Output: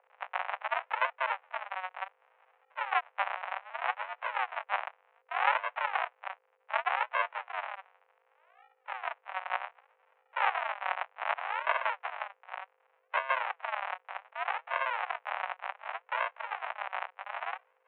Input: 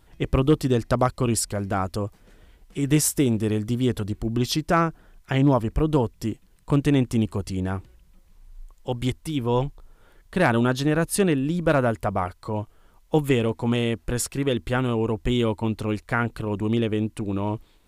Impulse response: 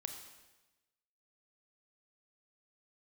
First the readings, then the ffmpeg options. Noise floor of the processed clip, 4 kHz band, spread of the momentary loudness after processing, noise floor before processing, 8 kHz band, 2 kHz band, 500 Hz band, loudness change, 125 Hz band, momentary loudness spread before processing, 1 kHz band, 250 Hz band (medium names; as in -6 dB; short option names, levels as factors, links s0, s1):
-73 dBFS, -10.5 dB, 12 LU, -58 dBFS, under -40 dB, -1.0 dB, -17.5 dB, -10.0 dB, under -40 dB, 9 LU, -1.5 dB, under -40 dB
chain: -af "aresample=8000,acrusher=samples=29:mix=1:aa=0.000001:lfo=1:lforange=29:lforate=0.66,aresample=44100,aeval=exprs='val(0)+0.0112*(sin(2*PI*50*n/s)+sin(2*PI*2*50*n/s)/2+sin(2*PI*3*50*n/s)/3+sin(2*PI*4*50*n/s)/4+sin(2*PI*5*50*n/s)/5)':c=same,highpass=f=470:t=q:w=0.5412,highpass=f=470:t=q:w=1.307,lowpass=f=2400:t=q:w=0.5176,lowpass=f=2400:t=q:w=0.7071,lowpass=f=2400:t=q:w=1.932,afreqshift=270"